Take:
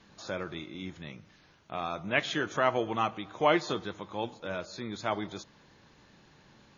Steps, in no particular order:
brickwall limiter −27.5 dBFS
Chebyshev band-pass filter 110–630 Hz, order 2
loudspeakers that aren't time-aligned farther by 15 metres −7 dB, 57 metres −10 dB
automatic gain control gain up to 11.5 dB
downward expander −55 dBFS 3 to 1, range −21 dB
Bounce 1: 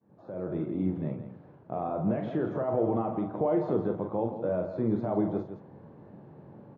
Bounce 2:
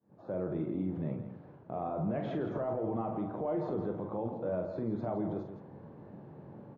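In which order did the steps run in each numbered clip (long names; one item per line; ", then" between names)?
brickwall limiter, then loudspeakers that aren't time-aligned, then automatic gain control, then downward expander, then Chebyshev band-pass filter
Chebyshev band-pass filter, then automatic gain control, then brickwall limiter, then loudspeakers that aren't time-aligned, then downward expander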